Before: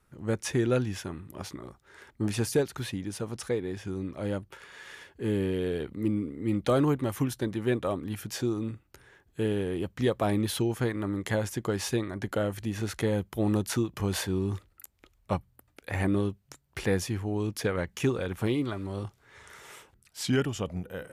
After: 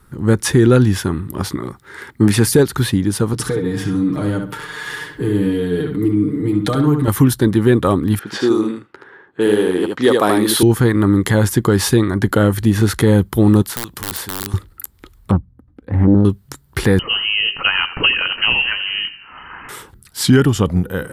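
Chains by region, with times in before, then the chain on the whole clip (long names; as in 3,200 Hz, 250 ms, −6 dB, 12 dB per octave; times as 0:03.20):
0:01.57–0:02.52: high-pass filter 93 Hz + parametric band 2,100 Hz +6 dB 0.52 octaves
0:03.33–0:07.08: comb filter 6.6 ms, depth 88% + downward compressor 3 to 1, threshold −35 dBFS + feedback echo with a low-pass in the loop 67 ms, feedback 30%, low-pass 4,400 Hz, level −5.5 dB
0:08.19–0:10.63: low-pass that shuts in the quiet parts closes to 1,600 Hz, open at −25 dBFS + high-pass filter 360 Hz + single-tap delay 76 ms −3.5 dB
0:13.62–0:14.54: wrap-around overflow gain 20 dB + every bin compressed towards the loudest bin 2 to 1
0:15.31–0:16.25: resonant band-pass 110 Hz, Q 0.53 + comb filter 3.9 ms, depth 41% + highs frequency-modulated by the lows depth 0.47 ms
0:16.99–0:19.69: voice inversion scrambler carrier 3,000 Hz + echo with shifted repeats 84 ms, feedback 51%, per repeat −50 Hz, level −14 dB
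whole clip: graphic EQ with 15 bands 630 Hz −10 dB, 2,500 Hz −9 dB, 6,300 Hz −7 dB; boost into a limiter +20 dB; level −1 dB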